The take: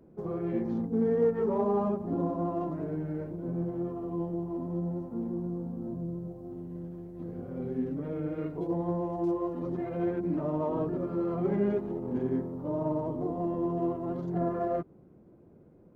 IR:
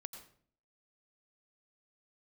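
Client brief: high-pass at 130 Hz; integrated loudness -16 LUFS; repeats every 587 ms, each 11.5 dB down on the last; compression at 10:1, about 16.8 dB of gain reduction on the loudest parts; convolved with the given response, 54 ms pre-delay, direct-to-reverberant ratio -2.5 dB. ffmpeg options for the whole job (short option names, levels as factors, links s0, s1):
-filter_complex "[0:a]highpass=130,acompressor=threshold=0.01:ratio=10,aecho=1:1:587|1174|1761:0.266|0.0718|0.0194,asplit=2[s0][s1];[1:a]atrim=start_sample=2205,adelay=54[s2];[s1][s2]afir=irnorm=-1:irlink=0,volume=2.11[s3];[s0][s3]amix=inputs=2:normalize=0,volume=15.8"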